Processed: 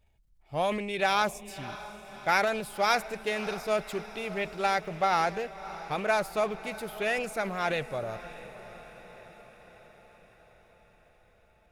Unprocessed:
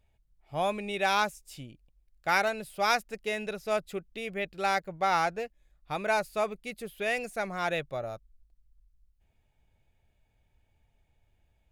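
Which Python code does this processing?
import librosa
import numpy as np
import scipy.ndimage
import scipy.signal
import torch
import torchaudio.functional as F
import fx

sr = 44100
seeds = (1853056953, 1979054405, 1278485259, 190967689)

y = fx.transient(x, sr, attack_db=2, sustain_db=6)
y = fx.echo_diffused(y, sr, ms=601, feedback_pct=61, wet_db=-15)
y = fx.doppler_dist(y, sr, depth_ms=0.19)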